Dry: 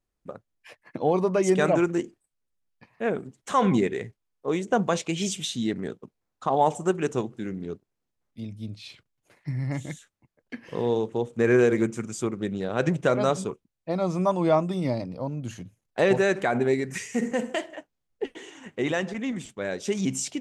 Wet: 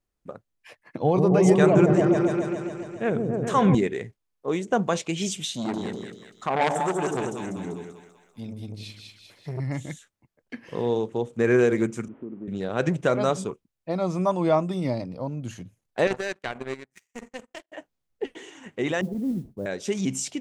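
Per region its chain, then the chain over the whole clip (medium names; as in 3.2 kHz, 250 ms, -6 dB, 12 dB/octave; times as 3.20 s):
1.00–3.75 s: peaking EQ 120 Hz +12.5 dB 0.76 oct + delay with an opening low-pass 138 ms, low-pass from 400 Hz, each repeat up 1 oct, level 0 dB
5.54–9.60 s: treble shelf 8.8 kHz +9.5 dB + two-band feedback delay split 680 Hz, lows 86 ms, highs 195 ms, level -4 dB + transformer saturation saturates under 1.7 kHz
12.08–12.48 s: one-bit delta coder 16 kbps, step -35.5 dBFS + band-pass filter 260 Hz, Q 2.2 + compression 3:1, threshold -32 dBFS
16.07–17.72 s: bass shelf 260 Hz -6.5 dB + gate -34 dBFS, range -7 dB + power-law waveshaper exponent 2
19.01–19.66 s: Bessel low-pass 530 Hz, order 4 + bass shelf 260 Hz +7.5 dB + modulation noise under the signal 32 dB
whole clip: none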